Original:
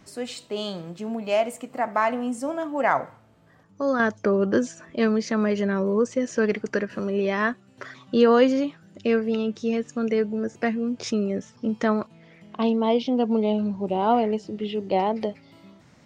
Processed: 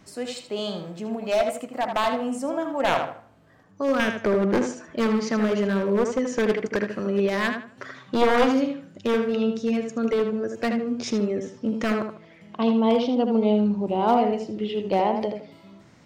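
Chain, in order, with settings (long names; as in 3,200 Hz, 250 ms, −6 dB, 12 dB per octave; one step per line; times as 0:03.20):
wavefolder on the positive side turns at −16.5 dBFS
on a send: tape delay 78 ms, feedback 31%, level −5 dB, low-pass 3,200 Hz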